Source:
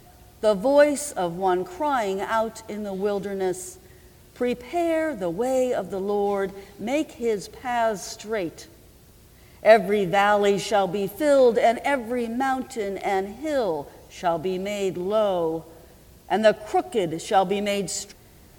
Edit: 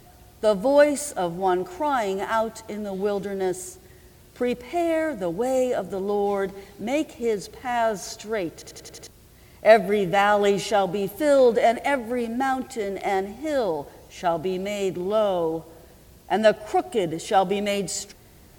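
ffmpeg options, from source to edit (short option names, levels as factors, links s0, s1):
-filter_complex "[0:a]asplit=7[s0][s1][s2][s3][s4][s5][s6];[s0]atrim=end=8.622[s7];[s1]atrim=start=8.528:end=8.622[s8];[s2]atrim=start=8.528:end=8.622[s9];[s3]atrim=start=8.528:end=8.622[s10];[s4]atrim=start=8.528:end=8.622[s11];[s5]atrim=start=8.528:end=8.622[s12];[s6]atrim=start=9.068[s13];[s7][s8]acrossfade=d=0.004:c1=hsin:c2=hsin[s14];[s14][s9]acrossfade=d=0.004:c1=hsin:c2=hsin[s15];[s15][s10]acrossfade=d=0.004:c1=hsin:c2=hsin[s16];[s16][s11]acrossfade=d=0.004:c1=hsin:c2=hsin[s17];[s17][s12]acrossfade=d=0.004:c1=hsin:c2=hsin[s18];[s18][s13]acrossfade=d=0.004:c1=hsin:c2=hsin"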